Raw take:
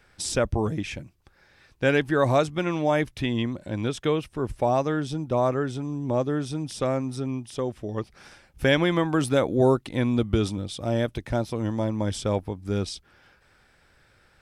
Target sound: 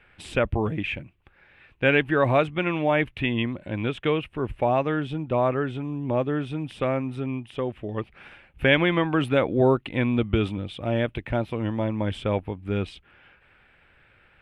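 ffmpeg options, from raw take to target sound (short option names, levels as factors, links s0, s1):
-af "highshelf=f=3900:t=q:w=3:g=-13"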